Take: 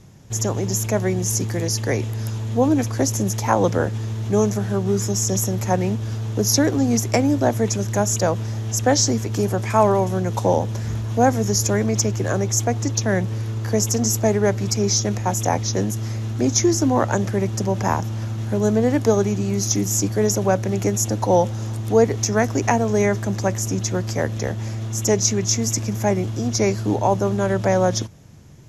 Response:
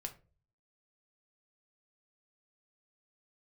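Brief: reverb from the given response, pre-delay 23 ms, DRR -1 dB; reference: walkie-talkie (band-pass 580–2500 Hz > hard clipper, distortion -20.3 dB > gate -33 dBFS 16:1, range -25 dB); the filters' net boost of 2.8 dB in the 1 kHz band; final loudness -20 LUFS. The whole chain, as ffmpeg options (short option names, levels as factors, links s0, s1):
-filter_complex "[0:a]equalizer=f=1000:t=o:g=5,asplit=2[s0][s1];[1:a]atrim=start_sample=2205,adelay=23[s2];[s1][s2]afir=irnorm=-1:irlink=0,volume=1.5[s3];[s0][s3]amix=inputs=2:normalize=0,highpass=580,lowpass=2500,asoftclip=type=hard:threshold=0.531,agate=range=0.0562:threshold=0.0224:ratio=16,volume=1.26"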